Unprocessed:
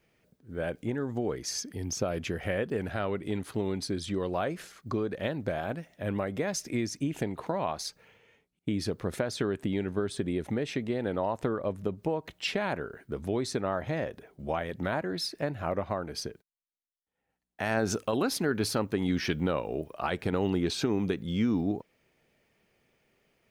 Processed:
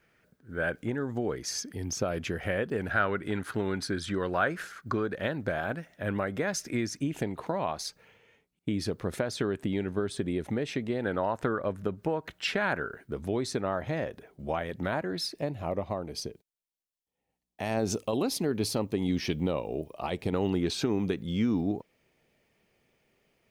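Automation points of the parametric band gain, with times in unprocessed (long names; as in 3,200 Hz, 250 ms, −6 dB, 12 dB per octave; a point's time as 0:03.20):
parametric band 1,500 Hz 0.63 octaves
+11 dB
from 0:00.89 +3.5 dB
from 0:02.90 +14 dB
from 0:05.06 +7 dB
from 0:07.02 +0.5 dB
from 0:11.03 +8.5 dB
from 0:12.95 0 dB
from 0:15.33 −12 dB
from 0:20.34 −2 dB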